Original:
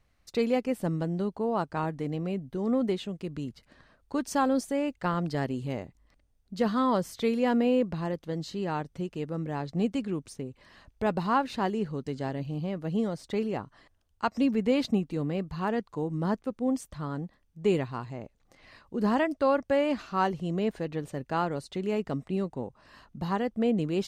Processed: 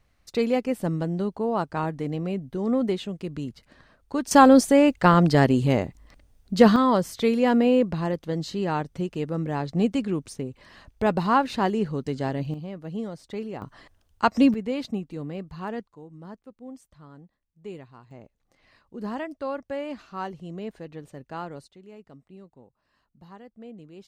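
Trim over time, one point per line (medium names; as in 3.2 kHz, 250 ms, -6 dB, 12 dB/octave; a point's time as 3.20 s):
+3 dB
from 4.31 s +12 dB
from 6.76 s +5 dB
from 12.54 s -3.5 dB
from 13.62 s +7.5 dB
from 14.54 s -3.5 dB
from 15.87 s -13.5 dB
from 18.11 s -6.5 dB
from 21.68 s -17 dB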